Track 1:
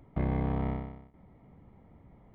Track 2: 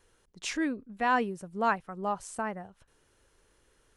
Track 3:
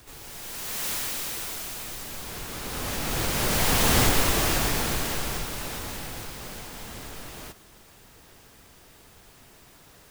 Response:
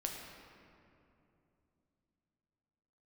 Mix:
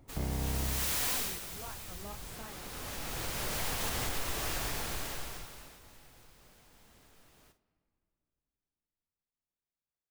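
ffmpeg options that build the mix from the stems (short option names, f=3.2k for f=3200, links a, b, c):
-filter_complex "[0:a]asubboost=boost=11.5:cutoff=95,volume=-3.5dB[a];[1:a]acompressor=threshold=-32dB:ratio=6,flanger=delay=17.5:depth=7.4:speed=1.7,volume=-9.5dB[b];[2:a]adynamicequalizer=threshold=0.00631:dfrequency=220:dqfactor=0.83:tfrequency=220:tqfactor=0.83:attack=5:release=100:ratio=0.375:range=2.5:mode=cutabove:tftype=bell,agate=range=-27dB:threshold=-45dB:ratio=16:detection=peak,volume=-2dB,afade=t=out:st=1.14:d=0.26:silence=0.334965,afade=t=out:st=5.08:d=0.71:silence=0.251189,asplit=2[c][d];[d]volume=-11.5dB[e];[3:a]atrim=start_sample=2205[f];[e][f]afir=irnorm=-1:irlink=0[g];[a][b][c][g]amix=inputs=4:normalize=0,alimiter=limit=-23.5dB:level=0:latency=1:release=226"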